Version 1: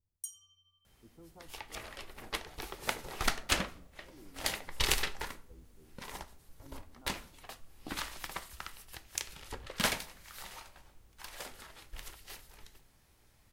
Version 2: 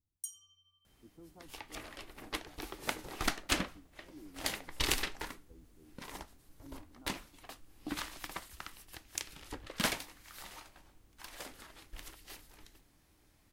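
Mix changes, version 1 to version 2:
speech: send off
second sound: send off
master: add parametric band 300 Hz +9.5 dB 0.36 octaves

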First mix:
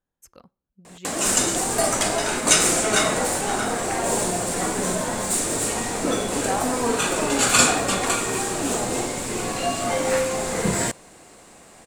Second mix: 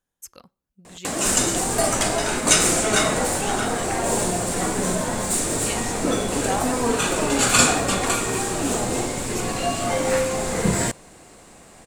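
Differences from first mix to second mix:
speech: add high-shelf EQ 2,200 Hz +11.5 dB
background: add low-shelf EQ 160 Hz +6.5 dB

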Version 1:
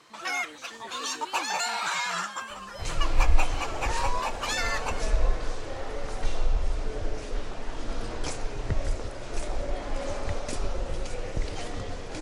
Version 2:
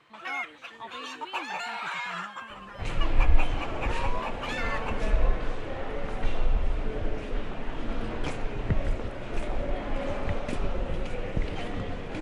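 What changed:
first sound −5.0 dB
second sound: add parametric band 190 Hz +7.5 dB 1.1 octaves
master: add high shelf with overshoot 3,900 Hz −10 dB, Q 1.5

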